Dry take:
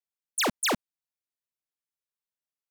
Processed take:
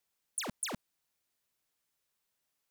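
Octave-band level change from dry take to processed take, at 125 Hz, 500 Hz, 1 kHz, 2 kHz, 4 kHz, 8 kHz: −7.5, −14.5, −14.5, −14.0, −13.0, −7.5 decibels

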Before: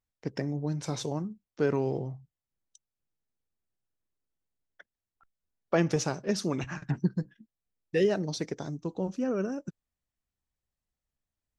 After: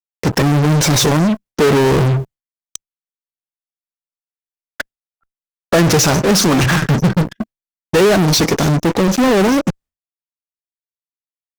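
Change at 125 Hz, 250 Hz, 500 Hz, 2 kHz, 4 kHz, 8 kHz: +19.0, +17.0, +15.5, +20.5, +23.0, +23.0 decibels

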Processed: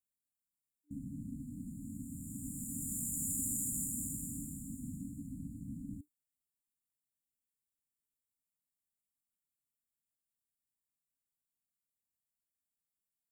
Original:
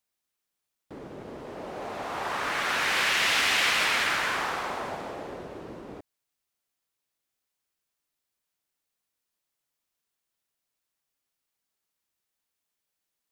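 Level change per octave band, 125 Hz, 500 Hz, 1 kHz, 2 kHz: +3.0 dB, below −35 dB, below −40 dB, below −40 dB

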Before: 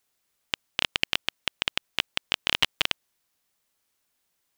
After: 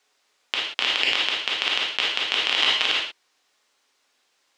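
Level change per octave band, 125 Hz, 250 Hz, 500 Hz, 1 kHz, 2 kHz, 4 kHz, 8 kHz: can't be measured, +1.0 dB, +5.5 dB, +6.5 dB, +6.0 dB, +6.5 dB, +2.0 dB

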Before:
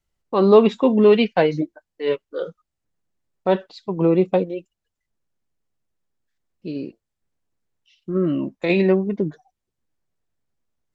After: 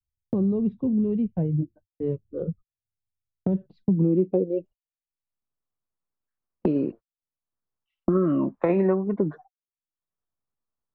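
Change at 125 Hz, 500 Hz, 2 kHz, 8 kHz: +0.5 dB, −8.5 dB, below −15 dB, can't be measured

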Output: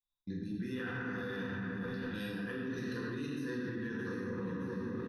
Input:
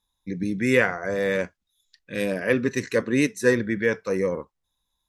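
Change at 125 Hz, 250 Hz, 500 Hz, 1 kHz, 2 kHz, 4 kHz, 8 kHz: −8.5, −11.0, −18.0, −12.0, −15.0, −12.0, −22.5 decibels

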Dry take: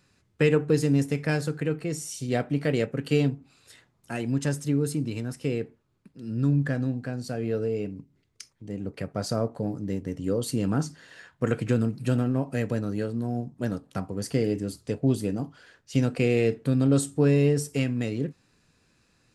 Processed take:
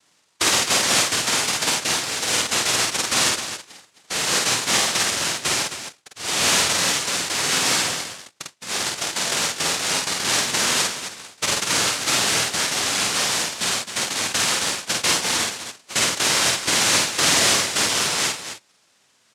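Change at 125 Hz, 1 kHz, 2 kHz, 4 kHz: −11.5, +15.5, +15.5, +24.0 decibels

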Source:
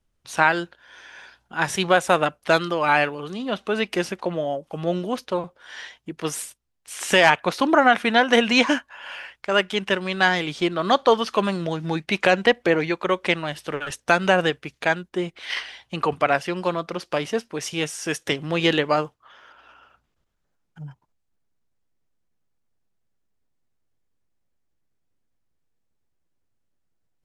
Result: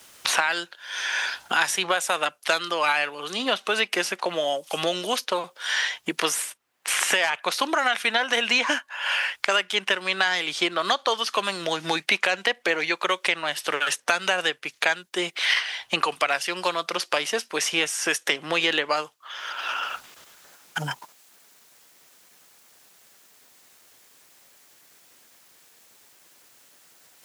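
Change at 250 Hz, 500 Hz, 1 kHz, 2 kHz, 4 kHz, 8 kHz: −9.5, −6.0, −3.5, 0.0, +3.0, +5.5 decibels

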